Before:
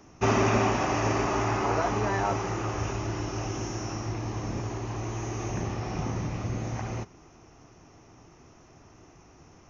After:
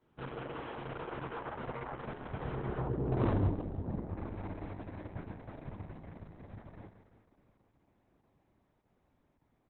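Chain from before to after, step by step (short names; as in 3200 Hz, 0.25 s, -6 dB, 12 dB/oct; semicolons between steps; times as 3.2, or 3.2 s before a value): Doppler pass-by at 3.27, 58 m/s, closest 4.3 m; treble ducked by the level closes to 550 Hz, closed at -44 dBFS; LPF 1900 Hz 6 dB/oct; in parallel at -3 dB: compressor 12:1, threshold -52 dBFS, peak gain reduction 20.5 dB; on the sum: wavefolder -34.5 dBFS; on a send: feedback echo 0.16 s, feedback 55%, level -11 dB; on the sum: gain +12 dB; Opus 6 kbps 48000 Hz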